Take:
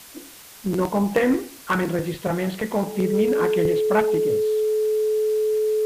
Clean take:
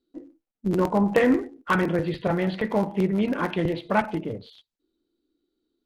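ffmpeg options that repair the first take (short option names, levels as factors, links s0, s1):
-af "bandreject=f=430:w=30,afwtdn=0.0071"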